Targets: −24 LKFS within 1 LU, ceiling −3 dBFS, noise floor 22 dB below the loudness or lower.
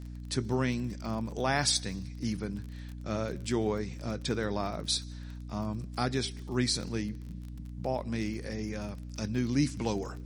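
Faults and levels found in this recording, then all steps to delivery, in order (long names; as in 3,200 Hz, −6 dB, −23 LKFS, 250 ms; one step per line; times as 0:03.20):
crackle rate 30 per second; mains hum 60 Hz; hum harmonics up to 300 Hz; level of the hum −39 dBFS; integrated loudness −33.0 LKFS; sample peak −13.0 dBFS; target loudness −24.0 LKFS
→ click removal
hum removal 60 Hz, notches 5
level +9 dB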